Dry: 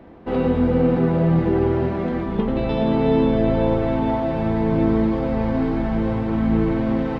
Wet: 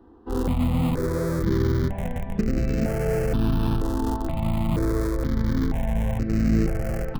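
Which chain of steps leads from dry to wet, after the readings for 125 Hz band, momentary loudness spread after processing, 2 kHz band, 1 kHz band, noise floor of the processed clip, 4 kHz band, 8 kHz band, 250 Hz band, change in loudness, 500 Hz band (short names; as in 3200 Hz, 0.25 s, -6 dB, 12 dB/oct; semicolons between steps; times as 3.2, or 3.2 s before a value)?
-1.5 dB, 5 LU, -3.5 dB, -7.5 dB, -33 dBFS, -2.0 dB, n/a, -6.0 dB, -4.5 dB, -8.0 dB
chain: low shelf 330 Hz +5 dB; in parallel at -3 dB: Schmitt trigger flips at -14 dBFS; on the sum: step phaser 2.1 Hz 600–3400 Hz; gain -7 dB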